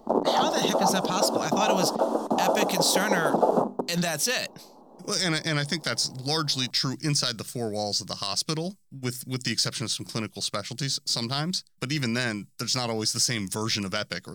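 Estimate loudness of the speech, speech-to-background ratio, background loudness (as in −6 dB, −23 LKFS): −27.5 LKFS, −1.5 dB, −26.0 LKFS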